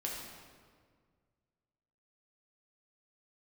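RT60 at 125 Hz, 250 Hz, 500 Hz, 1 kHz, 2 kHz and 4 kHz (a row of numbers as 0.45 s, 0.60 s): 2.4 s, 2.1 s, 1.9 s, 1.7 s, 1.5 s, 1.2 s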